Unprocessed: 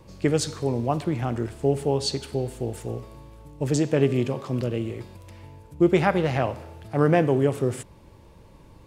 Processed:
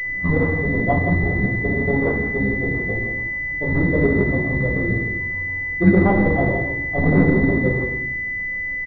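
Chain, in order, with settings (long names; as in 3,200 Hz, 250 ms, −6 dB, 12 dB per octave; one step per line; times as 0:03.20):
pitch shifter gated in a rhythm −10.5 semitones, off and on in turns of 72 ms
in parallel at −11 dB: wave folding −22.5 dBFS
on the sum: far-end echo of a speakerphone 170 ms, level −7 dB
convolution reverb RT60 0.65 s, pre-delay 3 ms, DRR −4.5 dB
switching amplifier with a slow clock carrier 2,000 Hz
level −2 dB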